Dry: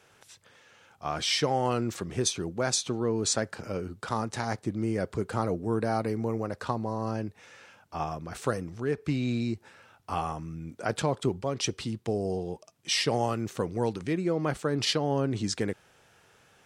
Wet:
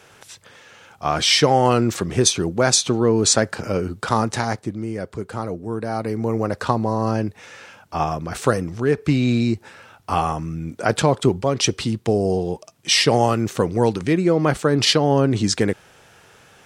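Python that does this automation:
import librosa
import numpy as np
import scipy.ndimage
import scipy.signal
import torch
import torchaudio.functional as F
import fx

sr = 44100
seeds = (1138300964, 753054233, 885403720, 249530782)

y = fx.gain(x, sr, db=fx.line((4.31, 11.0), (4.85, 1.5), (5.83, 1.5), (6.47, 10.5)))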